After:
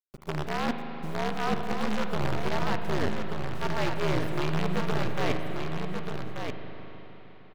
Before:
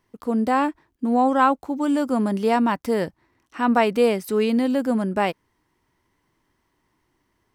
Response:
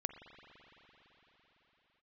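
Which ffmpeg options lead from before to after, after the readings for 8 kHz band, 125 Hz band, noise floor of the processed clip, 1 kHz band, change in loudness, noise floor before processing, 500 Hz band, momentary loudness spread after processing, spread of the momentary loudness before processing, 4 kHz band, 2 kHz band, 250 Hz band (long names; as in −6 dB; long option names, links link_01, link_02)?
−3.5 dB, +4.5 dB, −47 dBFS, −10.0 dB, −9.5 dB, −71 dBFS, −9.0 dB, 8 LU, 7 LU, −1.0 dB, −4.0 dB, −11.0 dB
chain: -filter_complex "[0:a]afreqshift=-71,areverse,acompressor=threshold=-33dB:ratio=10,areverse,acrusher=bits=6:dc=4:mix=0:aa=0.000001,acrossover=split=5500[link_01][link_02];[link_02]acompressor=threshold=-58dB:ratio=4:attack=1:release=60[link_03];[link_01][link_03]amix=inputs=2:normalize=0,aecho=1:1:1185:0.501[link_04];[1:a]atrim=start_sample=2205,asetrate=48510,aresample=44100[link_05];[link_04][link_05]afir=irnorm=-1:irlink=0,volume=8dB"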